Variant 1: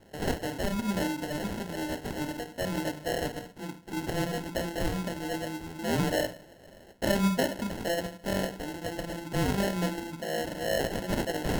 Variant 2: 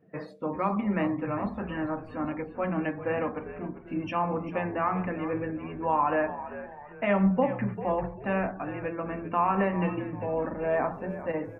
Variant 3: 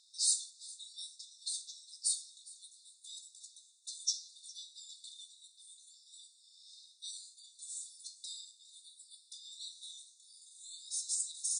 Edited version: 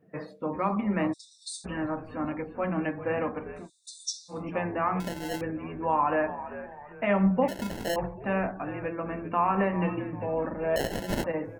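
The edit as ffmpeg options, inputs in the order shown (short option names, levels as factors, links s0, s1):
-filter_complex "[2:a]asplit=2[s0][s1];[0:a]asplit=3[s2][s3][s4];[1:a]asplit=6[s5][s6][s7][s8][s9][s10];[s5]atrim=end=1.14[s11];[s0]atrim=start=1.12:end=1.66[s12];[s6]atrim=start=1.64:end=3.7[s13];[s1]atrim=start=3.54:end=4.44[s14];[s7]atrim=start=4.28:end=5.002[s15];[s2]atrim=start=4.998:end=5.412[s16];[s8]atrim=start=5.408:end=7.482[s17];[s3]atrim=start=7.478:end=7.962[s18];[s9]atrim=start=7.958:end=10.762[s19];[s4]atrim=start=10.758:end=11.242[s20];[s10]atrim=start=11.238[s21];[s11][s12]acrossfade=d=0.02:c1=tri:c2=tri[s22];[s22][s13]acrossfade=d=0.02:c1=tri:c2=tri[s23];[s23][s14]acrossfade=d=0.16:c1=tri:c2=tri[s24];[s24][s15]acrossfade=d=0.16:c1=tri:c2=tri[s25];[s25][s16]acrossfade=d=0.004:c1=hsin:c2=hsin[s26];[s26][s17]acrossfade=d=0.004:c1=hsin:c2=hsin[s27];[s27][s18]acrossfade=d=0.004:c1=hsin:c2=hsin[s28];[s28][s19]acrossfade=d=0.004:c1=hsin:c2=hsin[s29];[s29][s20]acrossfade=d=0.004:c1=hsin:c2=hsin[s30];[s30][s21]acrossfade=d=0.004:c1=hsin:c2=hsin"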